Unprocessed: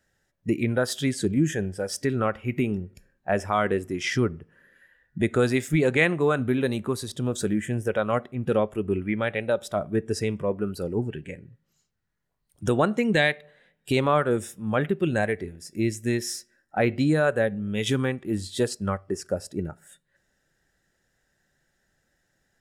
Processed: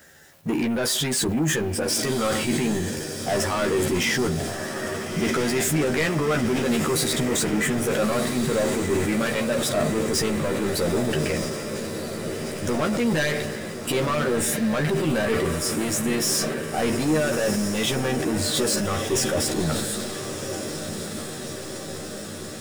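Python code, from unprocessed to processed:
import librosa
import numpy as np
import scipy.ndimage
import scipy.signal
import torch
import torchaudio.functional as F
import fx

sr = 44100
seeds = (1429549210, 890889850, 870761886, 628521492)

p1 = fx.law_mismatch(x, sr, coded='mu')
p2 = fx.highpass(p1, sr, hz=170.0, slope=6)
p3 = fx.high_shelf(p2, sr, hz=9600.0, db=5.0)
p4 = fx.over_compress(p3, sr, threshold_db=-31.0, ratio=-1.0)
p5 = p3 + F.gain(torch.from_numpy(p4), 2.0).numpy()
p6 = 10.0 ** (-21.5 / 20.0) * np.tanh(p5 / 10.0 ** (-21.5 / 20.0))
p7 = fx.doubler(p6, sr, ms=13.0, db=-3.5)
p8 = p7 + fx.echo_diffused(p7, sr, ms=1326, feedback_pct=69, wet_db=-8, dry=0)
y = fx.sustainer(p8, sr, db_per_s=30.0)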